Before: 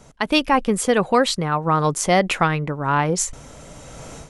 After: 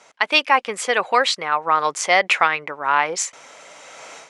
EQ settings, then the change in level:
band-pass filter 700–6,400 Hz
parametric band 2,200 Hz +5.5 dB 0.51 octaves
+3.0 dB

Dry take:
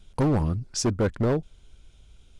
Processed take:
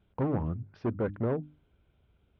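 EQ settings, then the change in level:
Gaussian smoothing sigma 3.6 samples
high-pass filter 79 Hz 12 dB per octave
mains-hum notches 50/100/150/200/250/300 Hz
−5.5 dB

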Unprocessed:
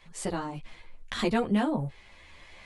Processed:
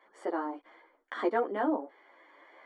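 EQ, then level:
Savitzky-Golay smoothing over 41 samples
elliptic high-pass filter 290 Hz, stop band 50 dB
+1.0 dB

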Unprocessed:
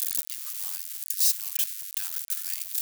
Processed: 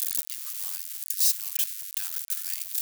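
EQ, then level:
high-pass filter 660 Hz 12 dB per octave
0.0 dB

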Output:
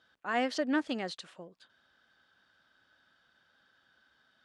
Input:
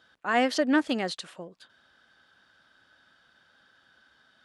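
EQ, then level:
low-pass filter 8,400 Hz 12 dB per octave
−6.5 dB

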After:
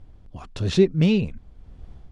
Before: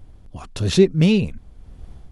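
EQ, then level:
high-frequency loss of the air 70 metres
−3.0 dB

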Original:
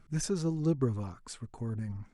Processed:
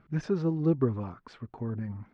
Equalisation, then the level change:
high-pass filter 160 Hz 6 dB per octave
high-frequency loss of the air 250 metres
high-shelf EQ 5,500 Hz −11.5 dB
+5.5 dB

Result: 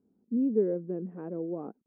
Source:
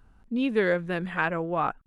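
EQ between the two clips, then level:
Chebyshev band-pass filter 210–430 Hz, order 2
0.0 dB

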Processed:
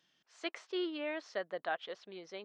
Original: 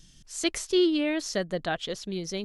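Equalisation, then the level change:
high-pass filter 770 Hz 12 dB per octave
head-to-tape spacing loss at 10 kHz 41 dB
+1.0 dB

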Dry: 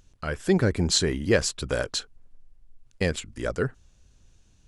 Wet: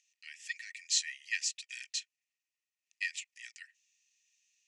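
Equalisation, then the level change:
Chebyshev high-pass with heavy ripple 1,800 Hz, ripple 9 dB
high-frequency loss of the air 73 metres
+2.0 dB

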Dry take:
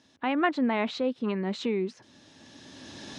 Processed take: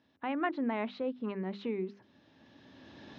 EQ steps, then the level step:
high-frequency loss of the air 280 metres
mains-hum notches 50/100/150/200/250/300/350/400 Hz
−5.5 dB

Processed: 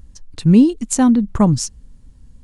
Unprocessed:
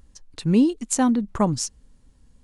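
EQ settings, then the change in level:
bass and treble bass +9 dB, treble +1 dB
+2.5 dB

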